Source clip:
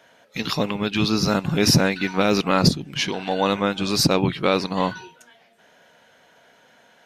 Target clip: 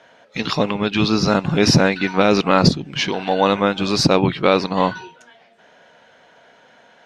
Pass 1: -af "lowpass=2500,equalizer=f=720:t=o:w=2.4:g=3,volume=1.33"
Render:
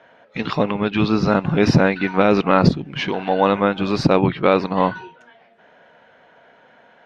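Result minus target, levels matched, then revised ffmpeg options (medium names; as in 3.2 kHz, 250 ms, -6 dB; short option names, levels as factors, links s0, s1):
8 kHz band -12.5 dB
-af "lowpass=6000,equalizer=f=720:t=o:w=2.4:g=3,volume=1.33"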